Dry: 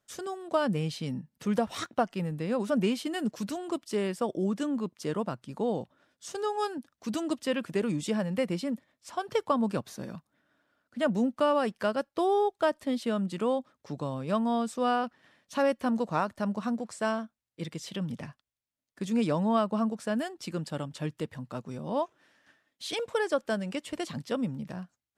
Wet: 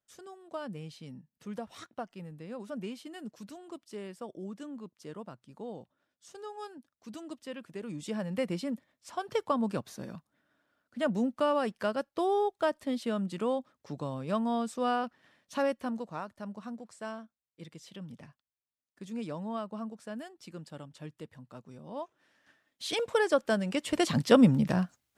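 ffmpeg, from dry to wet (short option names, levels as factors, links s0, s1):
-af "volume=8.91,afade=t=in:st=7.81:d=0.62:silence=0.334965,afade=t=out:st=15.56:d=0.54:silence=0.398107,afade=t=in:st=21.95:d=1.12:silence=0.237137,afade=t=in:st=23.71:d=0.64:silence=0.354813"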